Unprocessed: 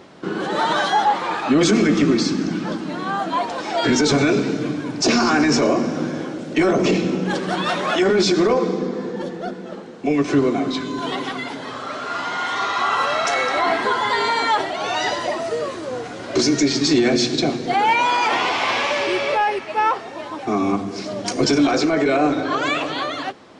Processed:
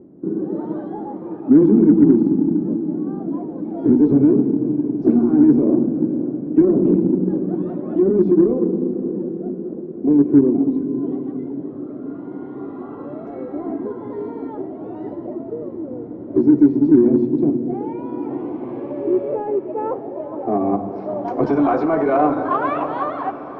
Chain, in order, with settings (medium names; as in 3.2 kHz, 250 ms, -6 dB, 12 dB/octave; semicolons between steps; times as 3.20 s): low-pass sweep 310 Hz -> 1 kHz, 18.59–21.72 s; echo that smears into a reverb 587 ms, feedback 78%, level -15.5 dB; Chebyshev shaper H 7 -37 dB, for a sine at -0.5 dBFS; trim -1 dB